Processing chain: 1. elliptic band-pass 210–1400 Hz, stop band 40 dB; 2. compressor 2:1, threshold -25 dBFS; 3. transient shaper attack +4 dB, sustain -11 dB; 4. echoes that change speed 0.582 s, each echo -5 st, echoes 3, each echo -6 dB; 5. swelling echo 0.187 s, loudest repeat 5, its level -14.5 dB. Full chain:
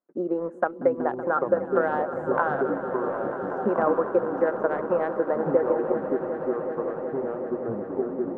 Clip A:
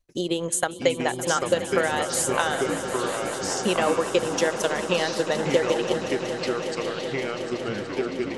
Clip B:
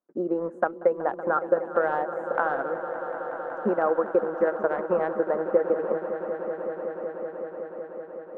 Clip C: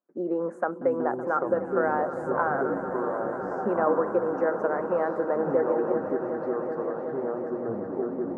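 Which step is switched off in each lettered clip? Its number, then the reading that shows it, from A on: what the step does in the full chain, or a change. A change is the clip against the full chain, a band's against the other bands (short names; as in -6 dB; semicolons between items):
1, 2 kHz band +6.0 dB; 4, momentary loudness spread change +4 LU; 3, crest factor change -2.0 dB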